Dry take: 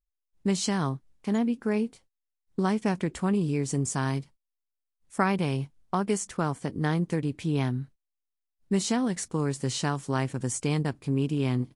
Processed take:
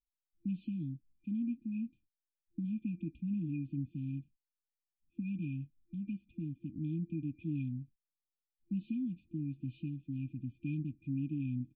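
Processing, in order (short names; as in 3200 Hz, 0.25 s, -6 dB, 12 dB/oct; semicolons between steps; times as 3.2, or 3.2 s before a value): vocal tract filter a; FFT band-reject 340–2400 Hz; gain +18 dB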